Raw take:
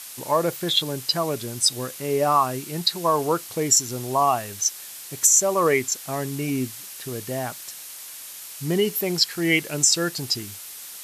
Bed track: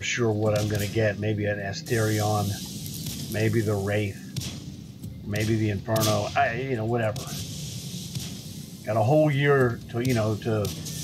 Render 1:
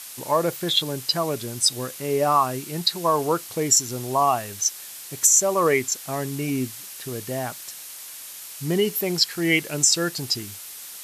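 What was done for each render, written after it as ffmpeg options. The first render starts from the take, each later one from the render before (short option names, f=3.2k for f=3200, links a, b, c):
-af anull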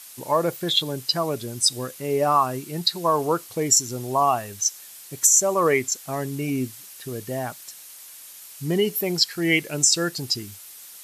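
-af "afftdn=nr=6:nf=-39"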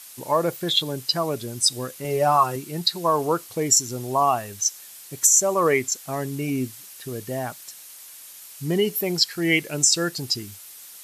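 -filter_complex "[0:a]asettb=1/sr,asplit=3[a][b][c];[a]atrim=end=2.044[d];[b]atrim=start=2.04:end=2.56,asetpts=PTS-STARTPTS,afade=t=in:d=0.004:c=qsin,afade=t=out:st=0.516:d=0.004:c=qsin,aecho=1:1:5.6:0.65,atrim=end_sample=22932[e];[c]atrim=start=2.556[f];[d][e]acrossfade=d=0.004:c1=hsin:c2=qsin[g];[g][f]acrossfade=d=0.004:c1=qsin:c2=hsin"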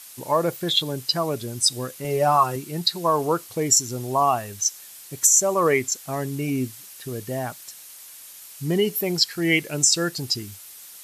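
-af "lowshelf=f=63:g=8"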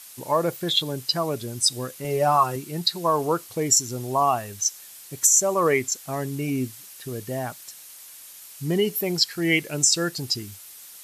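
-af "volume=-1dB"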